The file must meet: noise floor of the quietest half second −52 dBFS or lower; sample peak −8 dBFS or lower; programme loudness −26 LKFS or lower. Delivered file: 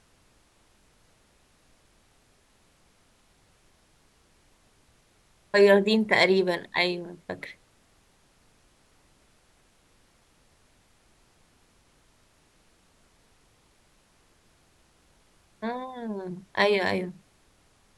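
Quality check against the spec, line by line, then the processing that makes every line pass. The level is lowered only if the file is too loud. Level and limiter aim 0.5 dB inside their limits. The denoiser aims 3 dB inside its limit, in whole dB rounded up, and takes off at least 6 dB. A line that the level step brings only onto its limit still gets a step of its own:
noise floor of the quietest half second −63 dBFS: in spec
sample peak −7.0 dBFS: out of spec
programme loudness −25.0 LKFS: out of spec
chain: level −1.5 dB

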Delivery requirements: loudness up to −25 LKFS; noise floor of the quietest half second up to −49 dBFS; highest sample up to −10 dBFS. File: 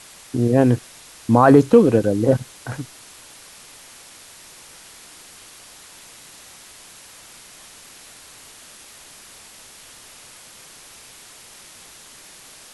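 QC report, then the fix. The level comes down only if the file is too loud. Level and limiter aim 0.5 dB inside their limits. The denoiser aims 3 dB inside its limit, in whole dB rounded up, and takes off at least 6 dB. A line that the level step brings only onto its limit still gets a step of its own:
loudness −17.0 LKFS: out of spec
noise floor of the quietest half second −44 dBFS: out of spec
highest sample −1.5 dBFS: out of spec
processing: level −8.5 dB
brickwall limiter −10.5 dBFS

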